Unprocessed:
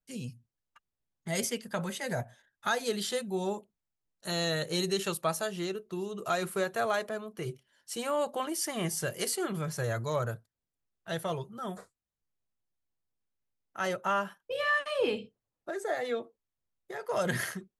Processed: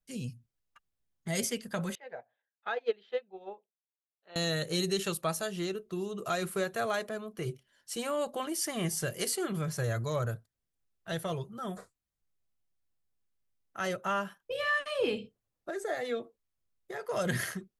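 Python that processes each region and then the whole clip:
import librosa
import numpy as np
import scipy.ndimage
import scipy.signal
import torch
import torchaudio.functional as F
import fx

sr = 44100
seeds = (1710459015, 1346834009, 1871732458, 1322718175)

y = fx.chain(x, sr, fx.cabinet(low_hz=410.0, low_slope=12, high_hz=3200.0, hz=(470.0, 800.0, 2500.0), db=(8, 6, 3)),
    fx.upward_expand(threshold_db=-36.0, expansion=2.5), at=(1.95, 4.36))
y = fx.low_shelf(y, sr, hz=88.0, db=6.0)
y = fx.notch(y, sr, hz=900.0, q=15.0)
y = fx.dynamic_eq(y, sr, hz=890.0, q=0.74, threshold_db=-37.0, ratio=4.0, max_db=-3)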